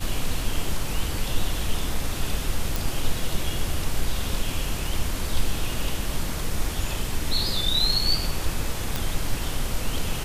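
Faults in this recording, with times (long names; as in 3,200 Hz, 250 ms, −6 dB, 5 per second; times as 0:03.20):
0:02.76: click
0:08.96: click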